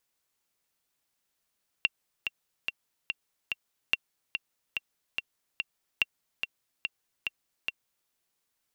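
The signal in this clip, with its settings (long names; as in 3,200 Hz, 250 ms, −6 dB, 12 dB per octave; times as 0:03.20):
click track 144 BPM, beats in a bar 5, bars 3, 2,740 Hz, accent 7 dB −10 dBFS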